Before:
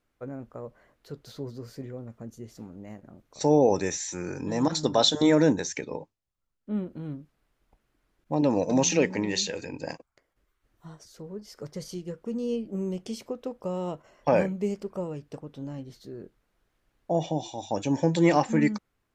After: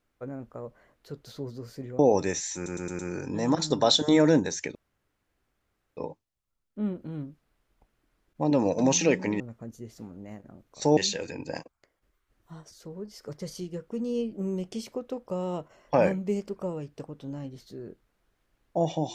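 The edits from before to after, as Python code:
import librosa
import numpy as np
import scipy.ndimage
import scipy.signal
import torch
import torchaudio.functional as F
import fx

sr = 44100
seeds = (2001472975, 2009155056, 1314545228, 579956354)

y = fx.edit(x, sr, fx.move(start_s=1.99, length_s=1.57, to_s=9.31),
    fx.stutter(start_s=4.12, slice_s=0.11, count=5),
    fx.insert_room_tone(at_s=5.88, length_s=1.22), tone=tone)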